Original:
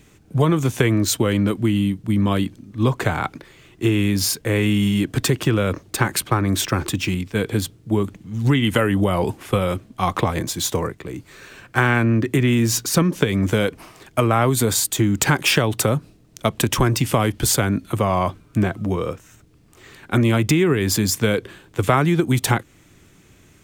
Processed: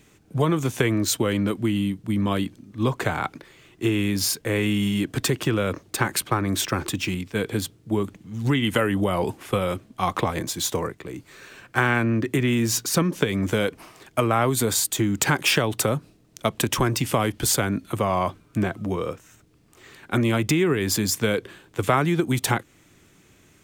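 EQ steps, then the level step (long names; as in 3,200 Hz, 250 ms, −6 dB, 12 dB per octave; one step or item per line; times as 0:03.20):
low-shelf EQ 130 Hz −6.5 dB
−2.5 dB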